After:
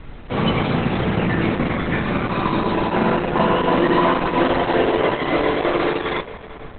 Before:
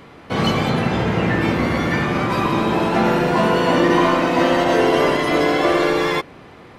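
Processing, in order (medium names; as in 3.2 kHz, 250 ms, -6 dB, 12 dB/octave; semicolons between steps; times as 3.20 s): added noise brown -35 dBFS; spring tank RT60 4 s, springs 50/56 ms, chirp 75 ms, DRR 13 dB; Opus 8 kbps 48 kHz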